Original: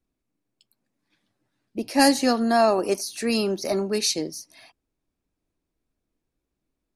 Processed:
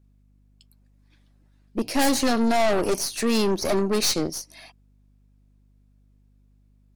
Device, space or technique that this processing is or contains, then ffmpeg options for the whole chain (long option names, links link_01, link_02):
valve amplifier with mains hum: -af "aeval=exprs='(tanh(20*val(0)+0.65)-tanh(0.65))/20':channel_layout=same,aeval=exprs='val(0)+0.000562*(sin(2*PI*50*n/s)+sin(2*PI*2*50*n/s)/2+sin(2*PI*3*50*n/s)/3+sin(2*PI*4*50*n/s)/4+sin(2*PI*5*50*n/s)/5)':channel_layout=same,volume=7.5dB"